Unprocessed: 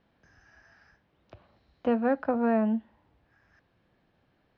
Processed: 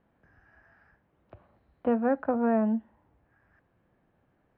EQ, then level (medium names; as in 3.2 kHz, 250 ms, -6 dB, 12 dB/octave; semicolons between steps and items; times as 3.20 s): low-pass 1.8 kHz 12 dB/octave; 0.0 dB